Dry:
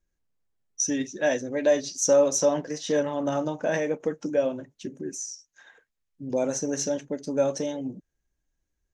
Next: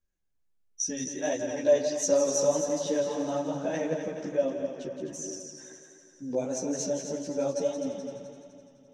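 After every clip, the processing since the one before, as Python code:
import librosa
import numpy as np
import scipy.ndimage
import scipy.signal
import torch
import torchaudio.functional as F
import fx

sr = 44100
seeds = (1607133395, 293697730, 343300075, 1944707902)

y = fx.echo_heads(x, sr, ms=85, heads='second and third', feedback_pct=57, wet_db=-8)
y = fx.dynamic_eq(y, sr, hz=1700.0, q=1.2, threshold_db=-41.0, ratio=4.0, max_db=-5)
y = fx.chorus_voices(y, sr, voices=2, hz=1.4, base_ms=13, depth_ms=3.0, mix_pct=55)
y = y * 10.0 ** (-1.5 / 20.0)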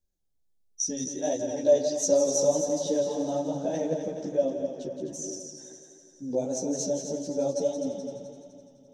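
y = fx.band_shelf(x, sr, hz=1700.0, db=-11.0, octaves=1.7)
y = y * 10.0 ** (1.5 / 20.0)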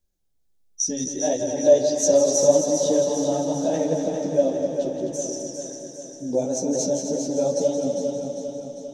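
y = fx.echo_feedback(x, sr, ms=400, feedback_pct=57, wet_db=-7)
y = y * 10.0 ** (5.0 / 20.0)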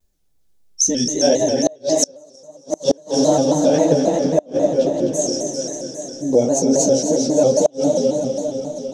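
y = fx.gate_flip(x, sr, shuts_db=-11.0, range_db=-33)
y = fx.vibrato_shape(y, sr, shape='square', rate_hz=3.7, depth_cents=100.0)
y = y * 10.0 ** (8.0 / 20.0)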